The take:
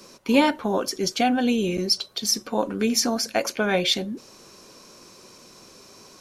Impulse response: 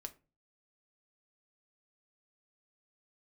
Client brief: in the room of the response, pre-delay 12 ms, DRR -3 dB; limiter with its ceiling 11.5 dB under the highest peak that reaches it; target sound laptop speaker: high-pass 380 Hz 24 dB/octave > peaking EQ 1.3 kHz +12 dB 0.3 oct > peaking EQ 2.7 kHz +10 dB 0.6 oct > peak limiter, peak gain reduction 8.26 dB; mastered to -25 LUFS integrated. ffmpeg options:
-filter_complex "[0:a]alimiter=limit=0.141:level=0:latency=1,asplit=2[s0][s1];[1:a]atrim=start_sample=2205,adelay=12[s2];[s1][s2]afir=irnorm=-1:irlink=0,volume=2.37[s3];[s0][s3]amix=inputs=2:normalize=0,highpass=f=380:w=0.5412,highpass=f=380:w=1.3066,equalizer=f=1300:t=o:w=0.3:g=12,equalizer=f=2700:t=o:w=0.6:g=10,volume=0.944,alimiter=limit=0.168:level=0:latency=1"

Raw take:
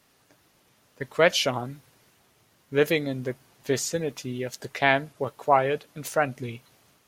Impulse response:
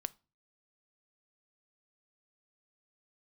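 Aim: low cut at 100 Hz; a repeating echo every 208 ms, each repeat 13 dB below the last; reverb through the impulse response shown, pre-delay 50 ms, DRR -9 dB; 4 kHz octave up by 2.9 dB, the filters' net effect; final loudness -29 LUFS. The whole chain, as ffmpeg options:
-filter_complex "[0:a]highpass=100,equalizer=f=4000:t=o:g=4,aecho=1:1:208|416|624:0.224|0.0493|0.0108,asplit=2[s0][s1];[1:a]atrim=start_sample=2205,adelay=50[s2];[s1][s2]afir=irnorm=-1:irlink=0,volume=3.35[s3];[s0][s3]amix=inputs=2:normalize=0,volume=0.224"

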